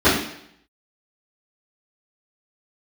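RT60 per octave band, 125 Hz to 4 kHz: 0.75, 0.70, 0.70, 0.70, 0.75, 0.70 seconds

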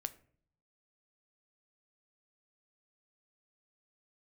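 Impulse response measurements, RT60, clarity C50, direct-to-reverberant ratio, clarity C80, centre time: non-exponential decay, 18.0 dB, 11.5 dB, 21.5 dB, 3 ms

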